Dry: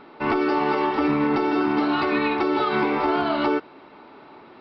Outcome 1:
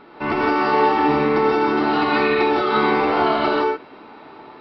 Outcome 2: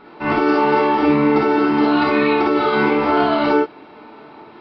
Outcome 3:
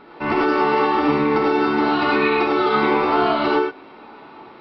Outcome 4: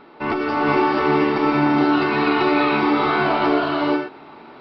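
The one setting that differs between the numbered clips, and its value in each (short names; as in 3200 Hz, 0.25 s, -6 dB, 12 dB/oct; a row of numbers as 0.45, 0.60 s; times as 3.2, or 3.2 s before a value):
non-linear reverb, gate: 190, 80, 130, 510 ms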